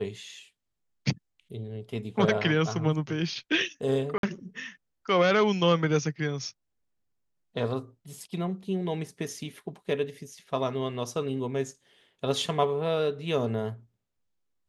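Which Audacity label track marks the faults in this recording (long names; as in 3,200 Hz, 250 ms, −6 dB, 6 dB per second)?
4.180000	4.230000	drop-out 52 ms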